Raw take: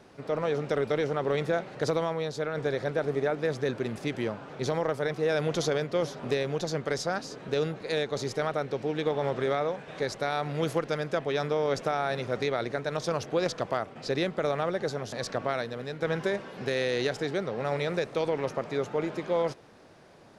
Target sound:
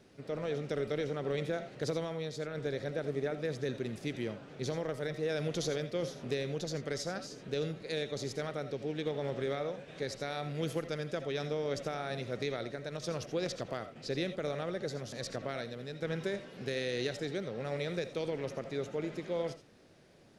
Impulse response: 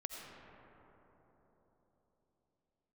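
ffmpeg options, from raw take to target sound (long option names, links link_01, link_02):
-filter_complex "[0:a]equalizer=frequency=970:width_type=o:width=1.4:gain=-9.5,asettb=1/sr,asplit=3[link_01][link_02][link_03];[link_01]atrim=end=12.594[link_04];[link_02]atrim=start=12.59:end=13.03,asetpts=PTS-STARTPTS,afade=type=in:duration=0.004:curve=qsin,afade=type=out:start_time=0.436:duration=0.004:curve=qsin,acompressor=threshold=-31dB:ratio=6[link_05];[link_03]atrim=start=13.026[link_06];[link_04][link_05]acrossfade=duration=0.004:curve1=hsin:curve2=qsin[link_07];[link_07][link_06]acrossfade=duration=0.004:curve1=qsin:curve2=hsin[link_08];[1:a]atrim=start_sample=2205,atrim=end_sample=3969[link_09];[link_08][link_09]afir=irnorm=-1:irlink=0"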